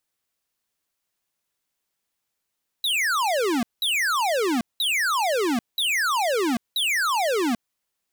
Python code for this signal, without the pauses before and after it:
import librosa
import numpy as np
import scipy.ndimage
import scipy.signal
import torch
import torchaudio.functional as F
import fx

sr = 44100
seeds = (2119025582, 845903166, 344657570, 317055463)

y = fx.laser_zaps(sr, level_db=-22.5, start_hz=4000.0, end_hz=220.0, length_s=0.79, wave='square', shots=5, gap_s=0.19)